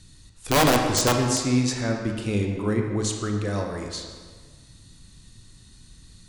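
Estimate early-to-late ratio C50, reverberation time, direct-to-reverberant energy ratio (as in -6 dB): 4.0 dB, 1.6 s, 2.5 dB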